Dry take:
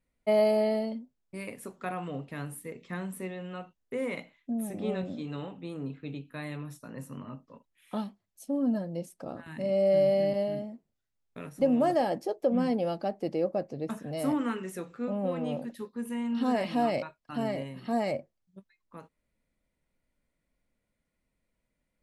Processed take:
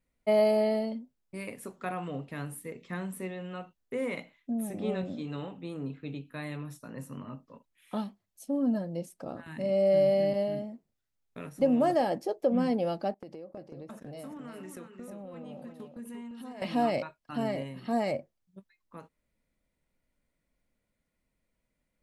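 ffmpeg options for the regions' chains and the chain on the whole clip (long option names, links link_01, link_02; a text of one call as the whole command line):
ffmpeg -i in.wav -filter_complex "[0:a]asettb=1/sr,asplit=3[link_01][link_02][link_03];[link_01]atrim=end=13.144[link_04];[link_02]atrim=start=13.14:end=16.62,asetpts=PTS-STARTPTS,afade=type=in:duration=0.004:curve=qsin,afade=type=out:start_time=3.476:duration=0.004:curve=qsin,agate=range=-15dB:threshold=-45dB:ratio=16:release=100:detection=peak,acompressor=threshold=-40dB:ratio=12:attack=3.2:release=140:knee=1:detection=peak,aecho=1:1:346:0.447,atrim=end_sample=153468[link_05];[link_03]atrim=start=16.616[link_06];[link_04][link_05]acrossfade=duration=0.004:curve1=hsin:curve2=qsin[link_07];[link_07][link_06]acrossfade=duration=0.004:curve1=qsin:curve2=hsin" out.wav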